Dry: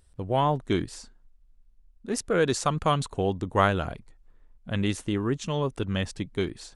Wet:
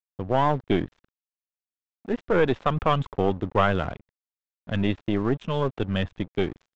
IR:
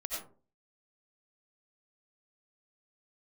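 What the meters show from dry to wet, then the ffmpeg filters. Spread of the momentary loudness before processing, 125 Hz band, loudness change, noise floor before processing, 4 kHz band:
10 LU, +1.0 dB, +2.0 dB, −59 dBFS, −1.5 dB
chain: -filter_complex "[0:a]aeval=exprs='0.422*(cos(1*acos(clip(val(0)/0.422,-1,1)))-cos(1*PI/2))+0.0422*(cos(6*acos(clip(val(0)/0.422,-1,1)))-cos(6*PI/2))':channel_layout=same,agate=range=-33dB:threshold=-49dB:ratio=3:detection=peak,acrossover=split=100[link_01][link_02];[link_02]asoftclip=type=tanh:threshold=-14.5dB[link_03];[link_01][link_03]amix=inputs=2:normalize=0,aresample=8000,aresample=44100,aresample=16000,aeval=exprs='sgn(val(0))*max(abs(val(0))-0.00596,0)':channel_layout=same,aresample=44100,aemphasis=mode=reproduction:type=cd,volume=4dB"

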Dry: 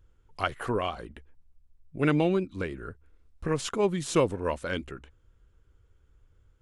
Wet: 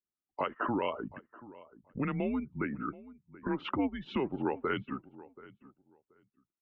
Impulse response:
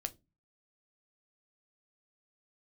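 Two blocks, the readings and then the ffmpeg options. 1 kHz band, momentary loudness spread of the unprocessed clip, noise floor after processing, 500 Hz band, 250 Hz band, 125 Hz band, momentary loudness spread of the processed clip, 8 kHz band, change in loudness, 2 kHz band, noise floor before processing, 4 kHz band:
−3.0 dB, 19 LU, below −85 dBFS, −8.0 dB, −3.0 dB, −8.5 dB, 20 LU, below −40 dB, −6.0 dB, −5.0 dB, −64 dBFS, −8.0 dB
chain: -filter_complex "[0:a]afftdn=noise_reduction=35:noise_floor=-42,alimiter=limit=-18dB:level=0:latency=1:release=176,acompressor=threshold=-36dB:ratio=4,asplit=2[link_01][link_02];[link_02]adelay=730,lowpass=frequency=1700:poles=1,volume=-18.5dB,asplit=2[link_03][link_04];[link_04]adelay=730,lowpass=frequency=1700:poles=1,volume=0.2[link_05];[link_01][link_03][link_05]amix=inputs=3:normalize=0,highpass=frequency=300:width_type=q:width=0.5412,highpass=frequency=300:width_type=q:width=1.307,lowpass=frequency=3100:width_type=q:width=0.5176,lowpass=frequency=3100:width_type=q:width=0.7071,lowpass=frequency=3100:width_type=q:width=1.932,afreqshift=-130,volume=7.5dB"

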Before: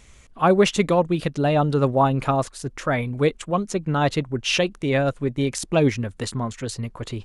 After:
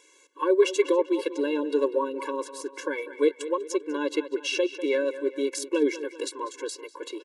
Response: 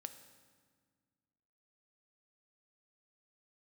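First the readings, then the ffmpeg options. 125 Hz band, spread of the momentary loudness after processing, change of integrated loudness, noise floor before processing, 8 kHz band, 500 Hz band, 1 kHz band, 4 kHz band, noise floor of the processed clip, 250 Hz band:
below −40 dB, 12 LU, −5.0 dB, −50 dBFS, −4.5 dB, −2.5 dB, −10.5 dB, −6.5 dB, −58 dBFS, −6.0 dB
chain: -filter_complex "[0:a]asplit=2[link_01][link_02];[link_02]adelay=196,lowpass=frequency=4100:poles=1,volume=-15dB,asplit=2[link_03][link_04];[link_04]adelay=196,lowpass=frequency=4100:poles=1,volume=0.49,asplit=2[link_05][link_06];[link_06]adelay=196,lowpass=frequency=4100:poles=1,volume=0.49,asplit=2[link_07][link_08];[link_08]adelay=196,lowpass=frequency=4100:poles=1,volume=0.49,asplit=2[link_09][link_10];[link_10]adelay=196,lowpass=frequency=4100:poles=1,volume=0.49[link_11];[link_03][link_05][link_07][link_09][link_11]amix=inputs=5:normalize=0[link_12];[link_01][link_12]amix=inputs=2:normalize=0,acrossover=split=480[link_13][link_14];[link_14]acompressor=threshold=-24dB:ratio=6[link_15];[link_13][link_15]amix=inputs=2:normalize=0,afftfilt=real='re*eq(mod(floor(b*sr/1024/290),2),1)':imag='im*eq(mod(floor(b*sr/1024/290),2),1)':win_size=1024:overlap=0.75"

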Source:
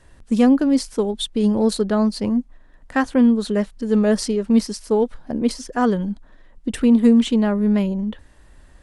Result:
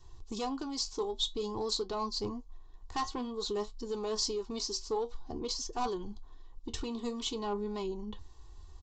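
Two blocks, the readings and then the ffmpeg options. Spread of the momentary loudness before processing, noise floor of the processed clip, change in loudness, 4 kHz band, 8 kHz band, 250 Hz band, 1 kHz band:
9 LU, −52 dBFS, −16.5 dB, −4.0 dB, −6.0 dB, −24.0 dB, −9.0 dB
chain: -filter_complex "[0:a]lowshelf=frequency=400:gain=-6,aecho=1:1:2.7:0.63,acrossover=split=600[link_01][link_02];[link_01]acompressor=threshold=-26dB:ratio=6[link_03];[link_03][link_02]amix=inputs=2:normalize=0,flanger=delay=7.8:depth=6:regen=62:speed=0.51:shape=triangular,aresample=16000,asoftclip=type=tanh:threshold=-22.5dB,aresample=44100,firequalizer=gain_entry='entry(110,0);entry(250,-13);entry(380,-6);entry(620,-17);entry(930,-1);entry(1600,-23);entry(3900,-4)':delay=0.05:min_phase=1,volume=5.5dB"

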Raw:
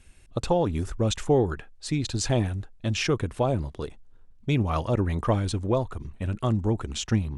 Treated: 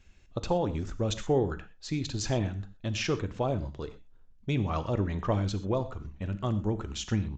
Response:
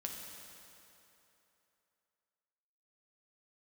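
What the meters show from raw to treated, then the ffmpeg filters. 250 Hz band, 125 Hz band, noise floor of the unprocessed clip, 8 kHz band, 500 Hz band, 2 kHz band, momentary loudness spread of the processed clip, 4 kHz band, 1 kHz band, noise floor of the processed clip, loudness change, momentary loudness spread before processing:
−4.0 dB, −4.5 dB, −52 dBFS, −5.5 dB, −4.5 dB, −4.5 dB, 11 LU, −4.5 dB, −4.5 dB, −56 dBFS, −4.5 dB, 11 LU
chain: -filter_complex "[0:a]asplit=2[link_01][link_02];[1:a]atrim=start_sample=2205,afade=type=out:start_time=0.18:duration=0.01,atrim=end_sample=8379[link_03];[link_02][link_03]afir=irnorm=-1:irlink=0,volume=0dB[link_04];[link_01][link_04]amix=inputs=2:normalize=0,aresample=16000,aresample=44100,volume=-9dB"

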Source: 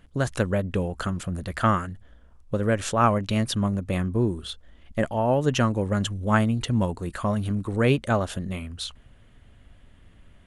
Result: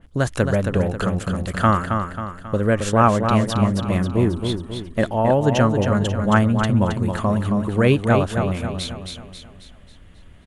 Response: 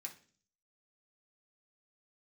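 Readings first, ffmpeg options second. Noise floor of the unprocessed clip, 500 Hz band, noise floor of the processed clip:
−54 dBFS, +6.0 dB, −45 dBFS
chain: -filter_complex "[0:a]asplit=2[link_01][link_02];[link_02]aecho=0:1:270|540|810|1080|1350|1620:0.501|0.231|0.106|0.0488|0.0224|0.0103[link_03];[link_01][link_03]amix=inputs=2:normalize=0,adynamicequalizer=threshold=0.01:dfrequency=2300:dqfactor=0.7:tfrequency=2300:tqfactor=0.7:attack=5:release=100:ratio=0.375:range=3:mode=cutabove:tftype=highshelf,volume=4.5dB"

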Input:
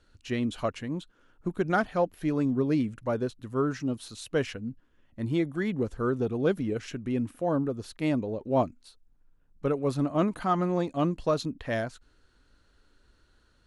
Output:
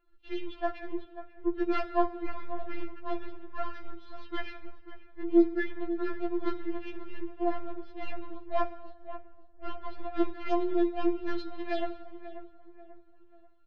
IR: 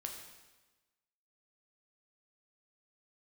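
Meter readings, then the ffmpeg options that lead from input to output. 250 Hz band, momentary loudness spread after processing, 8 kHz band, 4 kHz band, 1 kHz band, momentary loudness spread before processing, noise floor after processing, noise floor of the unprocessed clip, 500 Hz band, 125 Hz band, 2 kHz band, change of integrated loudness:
−3.5 dB, 17 LU, below −20 dB, −5.5 dB, −2.5 dB, 8 LU, −53 dBFS, −65 dBFS, −4.5 dB, below −20 dB, −4.5 dB, −4.0 dB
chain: -filter_complex "[0:a]aeval=exprs='if(lt(val(0),0),0.447*val(0),val(0))':channel_layout=same,lowshelf=frequency=290:gain=-7,asplit=2[link_01][link_02];[link_02]adelay=538,lowpass=frequency=3300:poles=1,volume=-12.5dB,asplit=2[link_03][link_04];[link_04]adelay=538,lowpass=frequency=3300:poles=1,volume=0.42,asplit=2[link_05][link_06];[link_06]adelay=538,lowpass=frequency=3300:poles=1,volume=0.42,asplit=2[link_07][link_08];[link_08]adelay=538,lowpass=frequency=3300:poles=1,volume=0.42[link_09];[link_01][link_03][link_05][link_07][link_09]amix=inputs=5:normalize=0,acrossover=split=110[link_10][link_11];[link_11]adynamicsmooth=sensitivity=7:basefreq=1500[link_12];[link_10][link_12]amix=inputs=2:normalize=0,lowpass=frequency=4400:width=0.5412,lowpass=frequency=4400:width=1.3066,equalizer=frequency=930:width=1.7:gain=-5,bandreject=frequency=126.2:width_type=h:width=4,bandreject=frequency=252.4:width_type=h:width=4,bandreject=frequency=378.6:width_type=h:width=4,bandreject=frequency=504.8:width_type=h:width=4,bandreject=frequency=631:width_type=h:width=4,bandreject=frequency=757.2:width_type=h:width=4,bandreject=frequency=883.4:width_type=h:width=4,bandreject=frequency=1009.6:width_type=h:width=4,bandreject=frequency=1135.8:width_type=h:width=4,bandreject=frequency=1262:width_type=h:width=4,bandreject=frequency=1388.2:width_type=h:width=4,bandreject=frequency=1514.4:width_type=h:width=4,bandreject=frequency=1640.6:width_type=h:width=4,bandreject=frequency=1766.8:width_type=h:width=4,bandreject=frequency=1893:width_type=h:width=4,bandreject=frequency=2019.2:width_type=h:width=4,bandreject=frequency=2145.4:width_type=h:width=4,bandreject=frequency=2271.6:width_type=h:width=4,bandreject=frequency=2397.8:width_type=h:width=4,bandreject=frequency=2524:width_type=h:width=4,bandreject=frequency=2650.2:width_type=h:width=4,bandreject=frequency=2776.4:width_type=h:width=4,bandreject=frequency=2902.6:width_type=h:width=4,bandreject=frequency=3028.8:width_type=h:width=4,bandreject=frequency=3155:width_type=h:width=4,bandreject=frequency=3281.2:width_type=h:width=4,bandreject=frequency=3407.4:width_type=h:width=4,bandreject=frequency=3533.6:width_type=h:width=4,bandreject=frequency=3659.8:width_type=h:width=4,bandreject=frequency=3786:width_type=h:width=4,bandreject=frequency=3912.2:width_type=h:width=4,bandreject=frequency=4038.4:width_type=h:width=4,bandreject=frequency=4164.6:width_type=h:width=4,bandreject=frequency=4290.8:width_type=h:width=4,asplit=2[link_13][link_14];[1:a]atrim=start_sample=2205[link_15];[link_14][link_15]afir=irnorm=-1:irlink=0,volume=-5dB[link_16];[link_13][link_16]amix=inputs=2:normalize=0,afftfilt=real='re*4*eq(mod(b,16),0)':imag='im*4*eq(mod(b,16),0)':win_size=2048:overlap=0.75,volume=2.5dB"

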